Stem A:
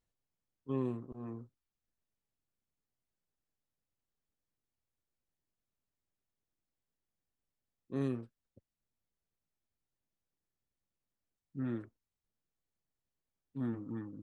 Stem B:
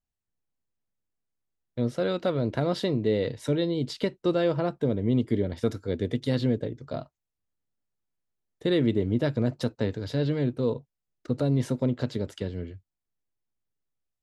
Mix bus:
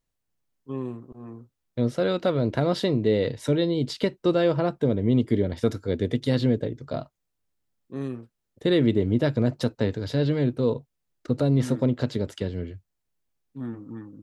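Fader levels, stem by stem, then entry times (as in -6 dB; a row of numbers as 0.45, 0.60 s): +3.0, +3.0 dB; 0.00, 0.00 s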